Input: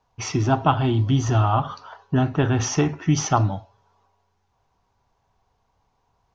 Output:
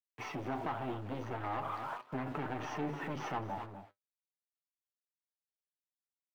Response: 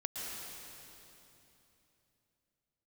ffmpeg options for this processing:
-filter_complex "[0:a]acrossover=split=3500[s0][s1];[s0]dynaudnorm=f=460:g=5:m=4.73[s2];[s2][s1]amix=inputs=2:normalize=0,aeval=exprs='(tanh(14.1*val(0)+0.5)-tanh(0.5))/14.1':c=same,lowpass=5400,equalizer=f=860:t=o:w=0.94:g=3,acrusher=bits=6:mix=0:aa=0.000001,asplit=2[s3][s4];[s4]aecho=0:1:252:0.2[s5];[s3][s5]amix=inputs=2:normalize=0,flanger=delay=6.5:depth=3.5:regen=57:speed=0.38:shape=sinusoidal,alimiter=level_in=1.33:limit=0.0631:level=0:latency=1:release=59,volume=0.75,acrossover=split=190 2900:gain=0.178 1 0.126[s6][s7][s8];[s6][s7][s8]amix=inputs=3:normalize=0"

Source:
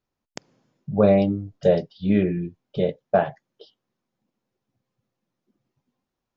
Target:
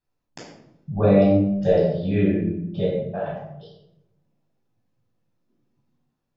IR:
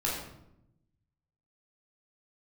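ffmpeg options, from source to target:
-filter_complex "[0:a]asettb=1/sr,asplit=3[s0][s1][s2];[s0]atrim=end=2.854[s3];[s1]atrim=start=2.85:end=3.26,asetpts=PTS-STARTPTS,afade=t=in:d=0.004:c=qsin,afade=t=out:st=0.406:d=0.004:c=qsin,acompressor=threshold=0.0224:ratio=2[s4];[s2]atrim=start=3.256[s5];[s3][s4]acrossfade=d=0.004:c1=hsin:c2=qsin[s6];[s6][s5]acrossfade=d=0.004:c1=qsin:c2=hsin[s7];[1:a]atrim=start_sample=2205[s8];[s7][s8]afir=irnorm=-1:irlink=0,volume=0.473"

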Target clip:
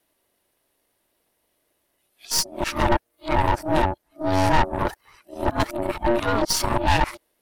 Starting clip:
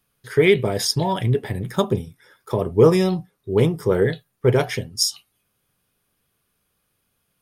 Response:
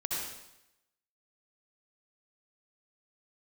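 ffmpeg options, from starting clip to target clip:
-af "areverse,aeval=exprs='val(0)*sin(2*PI*470*n/s)':c=same,aeval=exprs='(tanh(12.6*val(0)+0.7)-tanh(0.7))/12.6':c=same,volume=2.24"

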